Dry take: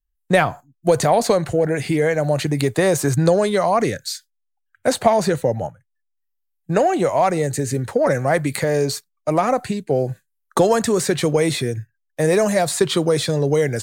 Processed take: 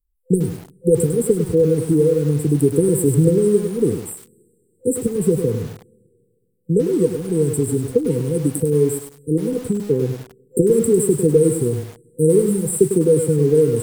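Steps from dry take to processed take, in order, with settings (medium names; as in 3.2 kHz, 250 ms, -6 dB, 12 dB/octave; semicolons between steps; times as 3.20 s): FFT band-reject 510–7500 Hz; two-slope reverb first 0.21 s, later 2.2 s, from -20 dB, DRR 15.5 dB; bit-crushed delay 101 ms, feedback 35%, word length 6-bit, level -8 dB; trim +3 dB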